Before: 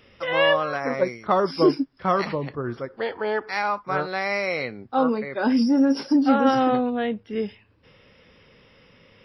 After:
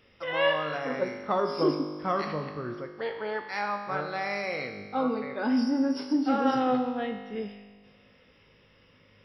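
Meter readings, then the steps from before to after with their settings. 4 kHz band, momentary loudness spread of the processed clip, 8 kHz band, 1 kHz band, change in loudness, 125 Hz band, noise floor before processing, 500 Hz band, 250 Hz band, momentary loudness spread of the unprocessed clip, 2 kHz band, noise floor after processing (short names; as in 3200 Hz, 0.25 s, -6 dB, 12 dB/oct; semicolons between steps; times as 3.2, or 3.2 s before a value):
-5.5 dB, 10 LU, n/a, -6.0 dB, -6.0 dB, -6.0 dB, -57 dBFS, -6.0 dB, -6.5 dB, 11 LU, -6.0 dB, -61 dBFS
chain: resonator 51 Hz, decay 1.6 s, harmonics all, mix 80%; gain +4.5 dB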